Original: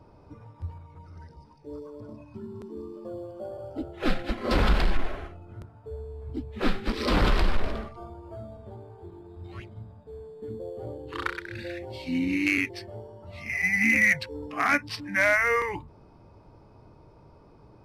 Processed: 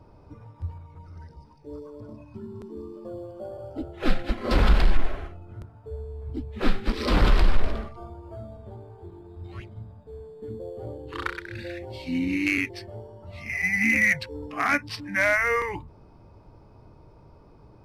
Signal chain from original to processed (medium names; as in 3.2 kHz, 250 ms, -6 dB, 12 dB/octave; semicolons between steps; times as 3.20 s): bass shelf 79 Hz +6 dB